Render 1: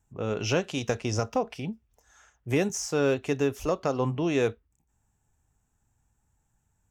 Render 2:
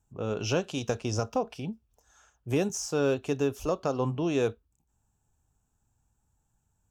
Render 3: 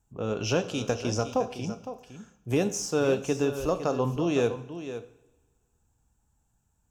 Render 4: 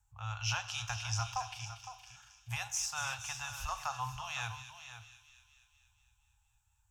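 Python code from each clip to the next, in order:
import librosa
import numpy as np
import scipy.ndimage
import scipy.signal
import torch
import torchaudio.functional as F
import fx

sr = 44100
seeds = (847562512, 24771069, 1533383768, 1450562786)

y1 = fx.peak_eq(x, sr, hz=2000.0, db=-10.0, octaves=0.39)
y1 = F.gain(torch.from_numpy(y1), -1.5).numpy()
y2 = y1 + 10.0 ** (-11.5 / 20.0) * np.pad(y1, (int(510 * sr / 1000.0), 0))[:len(y1)]
y2 = fx.rev_double_slope(y2, sr, seeds[0], early_s=0.67, late_s=1.7, knee_db=-16, drr_db=11.0)
y2 = F.gain(torch.from_numpy(y2), 1.5).numpy()
y3 = scipy.signal.sosfilt(scipy.signal.cheby1(4, 1.0, [110.0, 810.0], 'bandstop', fs=sr, output='sos'), y2)
y3 = fx.echo_wet_highpass(y3, sr, ms=235, feedback_pct=61, hz=2700.0, wet_db=-9)
y3 = F.gain(torch.from_numpy(y3), -1.5).numpy()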